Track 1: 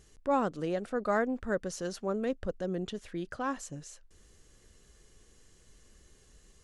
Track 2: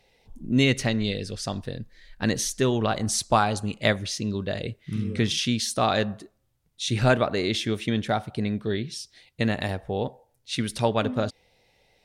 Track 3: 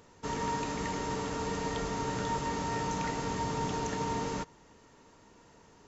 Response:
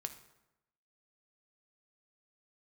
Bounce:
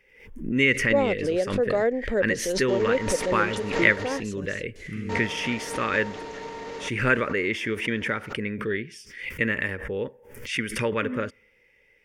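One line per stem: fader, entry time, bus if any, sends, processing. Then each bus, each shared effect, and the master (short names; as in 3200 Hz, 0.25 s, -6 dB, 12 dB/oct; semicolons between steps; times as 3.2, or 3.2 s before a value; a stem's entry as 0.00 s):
+0.5 dB, 0.65 s, no send, bell 1300 Hz -12.5 dB 1.1 oct
-4.0 dB, 0.00 s, send -23 dB, fixed phaser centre 1700 Hz, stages 4
-5.0 dB, 2.45 s, muted 4.2–5.09, no send, limiter -29.5 dBFS, peak gain reduction 7.5 dB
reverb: on, RT60 0.95 s, pre-delay 3 ms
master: graphic EQ 125/500/2000/4000/8000 Hz -5/+11/+11/+6/-4 dB; backwards sustainer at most 79 dB/s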